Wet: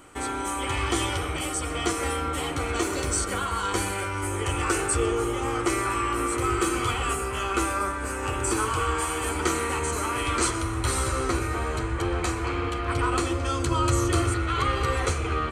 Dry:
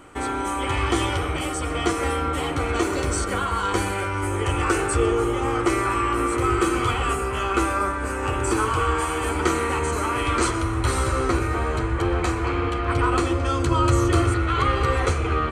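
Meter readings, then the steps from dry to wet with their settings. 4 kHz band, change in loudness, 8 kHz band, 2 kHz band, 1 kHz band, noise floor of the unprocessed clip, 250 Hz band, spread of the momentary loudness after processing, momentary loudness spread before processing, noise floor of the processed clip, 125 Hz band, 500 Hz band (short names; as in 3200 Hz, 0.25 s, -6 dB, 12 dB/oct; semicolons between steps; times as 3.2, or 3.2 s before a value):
-0.5 dB, -3.5 dB, +2.5 dB, -3.0 dB, -4.0 dB, -27 dBFS, -4.5 dB, 4 LU, 4 LU, -31 dBFS, -4.5 dB, -4.5 dB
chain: high shelf 3800 Hz +8.5 dB; gain -4.5 dB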